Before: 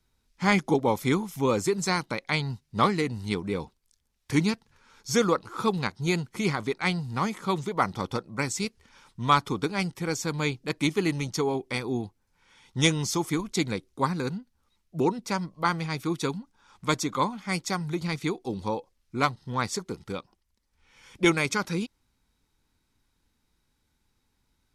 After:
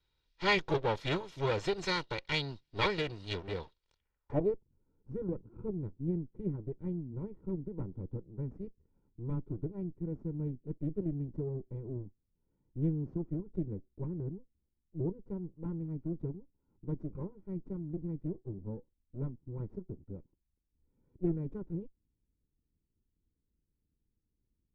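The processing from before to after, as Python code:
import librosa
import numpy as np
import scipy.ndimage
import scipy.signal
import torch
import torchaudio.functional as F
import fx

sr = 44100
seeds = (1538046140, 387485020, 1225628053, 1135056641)

y = fx.lower_of_two(x, sr, delay_ms=2.1)
y = fx.filter_sweep_lowpass(y, sr, from_hz=3800.0, to_hz=250.0, start_s=3.92, end_s=4.64, q=2.0)
y = y * 10.0 ** (-6.5 / 20.0)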